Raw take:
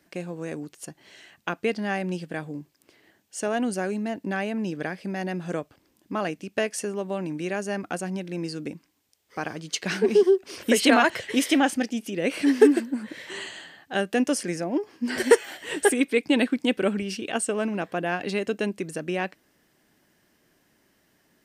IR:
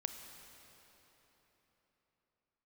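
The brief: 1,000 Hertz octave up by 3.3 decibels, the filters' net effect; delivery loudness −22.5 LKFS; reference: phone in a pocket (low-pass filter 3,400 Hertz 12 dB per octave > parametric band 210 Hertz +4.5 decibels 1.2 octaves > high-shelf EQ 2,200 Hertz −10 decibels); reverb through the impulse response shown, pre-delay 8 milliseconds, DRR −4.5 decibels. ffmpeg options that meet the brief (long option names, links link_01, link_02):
-filter_complex "[0:a]equalizer=frequency=1000:width_type=o:gain=6.5,asplit=2[link_01][link_02];[1:a]atrim=start_sample=2205,adelay=8[link_03];[link_02][link_03]afir=irnorm=-1:irlink=0,volume=5dB[link_04];[link_01][link_04]amix=inputs=2:normalize=0,lowpass=3400,equalizer=frequency=210:width_type=o:width=1.2:gain=4.5,highshelf=frequency=2200:gain=-10,volume=-4.5dB"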